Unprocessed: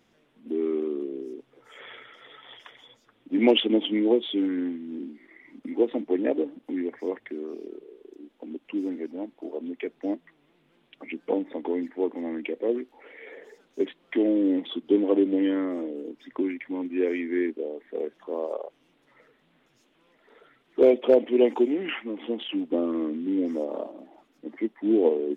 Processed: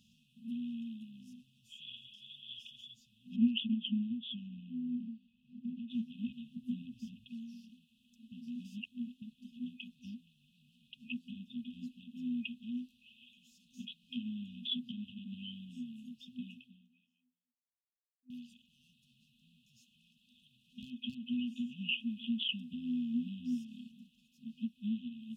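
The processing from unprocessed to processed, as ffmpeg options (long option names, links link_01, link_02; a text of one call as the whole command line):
ffmpeg -i in.wav -filter_complex "[0:a]asettb=1/sr,asplit=3[link_01][link_02][link_03];[link_01]atrim=end=3.364[link_04];[link_02]atrim=start=3.36:end=5.9,asetpts=PTS-STARTPTS,afade=type=in:duration=0.004:curve=qsin,afade=type=out:start_time=2.536:duration=0.004:curve=qsin,lowpass=2100[link_05];[link_03]atrim=start=5.896[link_06];[link_04][link_05]acrossfade=duration=0.004:curve1=hsin:curve2=qsin[link_07];[link_07][link_06]acrossfade=duration=0.004:curve1=qsin:curve2=hsin,asettb=1/sr,asplit=3[link_08][link_09][link_10];[link_08]atrim=end=6.564[link_11];[link_09]atrim=start=6.56:end=7.24,asetpts=PTS-STARTPTS,afade=type=in:duration=0.004:curve=qsin,afade=type=out:start_time=0.676:duration=0.004:curve=qsin,lowshelf=frequency=220:gain=11.5[link_12];[link_10]atrim=start=7.236[link_13];[link_11][link_12]acrossfade=duration=0.004:curve1=hsin:curve2=qsin[link_14];[link_14][link_13]acrossfade=duration=0.004:curve1=qsin:curve2=hsin,asplit=4[link_15][link_16][link_17][link_18];[link_15]atrim=end=8.322[link_19];[link_16]atrim=start=8.318:end=9.222,asetpts=PTS-STARTPTS,areverse[link_20];[link_17]atrim=start=9.218:end=18.3,asetpts=PTS-STARTPTS,afade=type=out:start_time=7.322:duration=1.76:curve=exp[link_21];[link_18]atrim=start=18.3,asetpts=PTS-STARTPTS,afade=type=in:duration=0.004:curve=hsin[link_22];[link_19][link_20]acrossfade=duration=0.004:curve1=hsin:curve2=hsin[link_23];[link_21][link_22]concat=n=2:v=0:a=1[link_24];[link_23][link_24]acrossfade=duration=0.004:curve1=hsin:curve2=hsin,acompressor=threshold=-23dB:ratio=6,afftfilt=real='re*(1-between(b*sr/4096,250,2500))':imag='im*(1-between(b*sr/4096,250,2500))':win_size=4096:overlap=0.75,highpass=46,volume=1.5dB" out.wav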